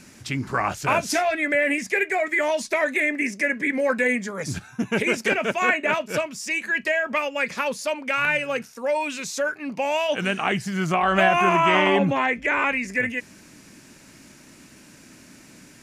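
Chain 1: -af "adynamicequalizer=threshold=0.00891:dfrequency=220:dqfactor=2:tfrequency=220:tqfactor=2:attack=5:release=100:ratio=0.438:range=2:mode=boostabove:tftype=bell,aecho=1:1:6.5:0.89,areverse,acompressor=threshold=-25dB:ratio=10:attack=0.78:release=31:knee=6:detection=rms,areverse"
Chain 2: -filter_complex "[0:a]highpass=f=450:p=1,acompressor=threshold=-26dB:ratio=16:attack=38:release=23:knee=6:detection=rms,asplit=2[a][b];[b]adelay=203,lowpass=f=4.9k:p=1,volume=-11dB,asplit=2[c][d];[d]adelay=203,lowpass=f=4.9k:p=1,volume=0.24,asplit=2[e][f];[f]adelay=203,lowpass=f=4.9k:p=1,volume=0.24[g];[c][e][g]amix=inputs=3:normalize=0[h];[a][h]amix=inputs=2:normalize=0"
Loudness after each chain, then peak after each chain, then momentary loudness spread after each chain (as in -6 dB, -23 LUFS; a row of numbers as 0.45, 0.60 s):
-29.5, -26.5 LUFS; -19.0, -11.0 dBFS; 16, 6 LU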